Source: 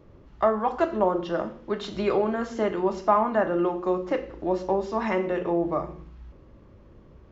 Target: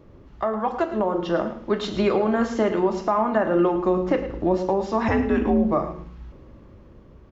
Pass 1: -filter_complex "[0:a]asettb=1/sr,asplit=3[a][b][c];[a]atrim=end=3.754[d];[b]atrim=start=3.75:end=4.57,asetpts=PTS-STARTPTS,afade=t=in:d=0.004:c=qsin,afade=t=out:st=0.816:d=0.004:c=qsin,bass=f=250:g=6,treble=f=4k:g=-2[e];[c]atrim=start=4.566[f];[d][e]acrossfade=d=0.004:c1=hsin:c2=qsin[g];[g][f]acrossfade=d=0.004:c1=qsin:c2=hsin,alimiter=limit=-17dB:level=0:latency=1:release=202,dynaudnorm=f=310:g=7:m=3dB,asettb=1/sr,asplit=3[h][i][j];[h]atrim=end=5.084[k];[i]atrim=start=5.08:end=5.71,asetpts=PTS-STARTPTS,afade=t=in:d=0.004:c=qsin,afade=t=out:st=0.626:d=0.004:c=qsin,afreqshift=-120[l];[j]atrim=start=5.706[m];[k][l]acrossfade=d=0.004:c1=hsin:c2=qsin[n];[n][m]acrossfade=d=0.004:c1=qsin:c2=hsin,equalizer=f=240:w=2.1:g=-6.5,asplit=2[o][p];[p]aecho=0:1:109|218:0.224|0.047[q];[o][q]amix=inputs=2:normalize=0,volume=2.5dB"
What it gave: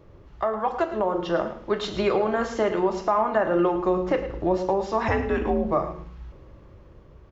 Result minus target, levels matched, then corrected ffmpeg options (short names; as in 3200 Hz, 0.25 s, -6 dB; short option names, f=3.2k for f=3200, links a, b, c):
250 Hz band -3.0 dB
-filter_complex "[0:a]asettb=1/sr,asplit=3[a][b][c];[a]atrim=end=3.754[d];[b]atrim=start=3.75:end=4.57,asetpts=PTS-STARTPTS,afade=t=in:d=0.004:c=qsin,afade=t=out:st=0.816:d=0.004:c=qsin,bass=f=250:g=6,treble=f=4k:g=-2[e];[c]atrim=start=4.566[f];[d][e]acrossfade=d=0.004:c1=hsin:c2=qsin[g];[g][f]acrossfade=d=0.004:c1=qsin:c2=hsin,alimiter=limit=-17dB:level=0:latency=1:release=202,dynaudnorm=f=310:g=7:m=3dB,asettb=1/sr,asplit=3[h][i][j];[h]atrim=end=5.084[k];[i]atrim=start=5.08:end=5.71,asetpts=PTS-STARTPTS,afade=t=in:d=0.004:c=qsin,afade=t=out:st=0.626:d=0.004:c=qsin,afreqshift=-120[l];[j]atrim=start=5.706[m];[k][l]acrossfade=d=0.004:c1=hsin:c2=qsin[n];[n][m]acrossfade=d=0.004:c1=qsin:c2=hsin,equalizer=f=240:w=2.1:g=2,asplit=2[o][p];[p]aecho=0:1:109|218:0.224|0.047[q];[o][q]amix=inputs=2:normalize=0,volume=2.5dB"